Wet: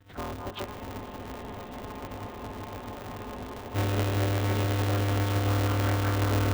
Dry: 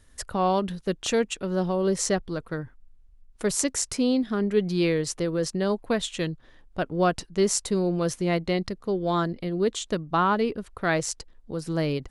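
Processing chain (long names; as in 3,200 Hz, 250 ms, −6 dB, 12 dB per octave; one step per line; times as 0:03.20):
one-pitch LPC vocoder at 8 kHz 160 Hz
notch filter 990 Hz, Q 25
on a send: feedback echo with a high-pass in the loop 343 ms, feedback 83%, high-pass 320 Hz, level −6 dB
on the sum: time stretch by phase vocoder 0.54×
downward compressor 6 to 1, threshold −33 dBFS, peak gain reduction 12.5 dB
echo that builds up and dies away 143 ms, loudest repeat 8, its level −8 dB
frozen spectrum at 0:00.67, 3.07 s
ring modulator with a square carrier 100 Hz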